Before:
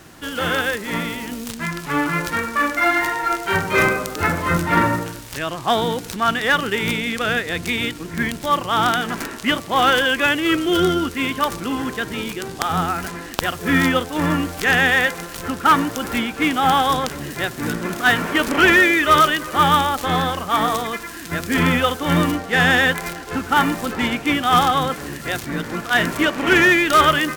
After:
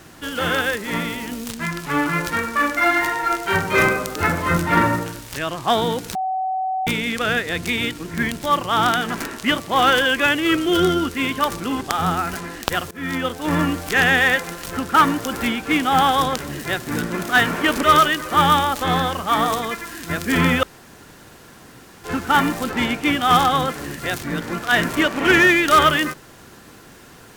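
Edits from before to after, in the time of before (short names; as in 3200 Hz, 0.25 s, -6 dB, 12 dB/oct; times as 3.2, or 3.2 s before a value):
6.15–6.87 bleep 755 Hz -20 dBFS
11.81–12.52 cut
13.62–14.24 fade in, from -22 dB
18.54–19.05 cut
21.85–23.26 room tone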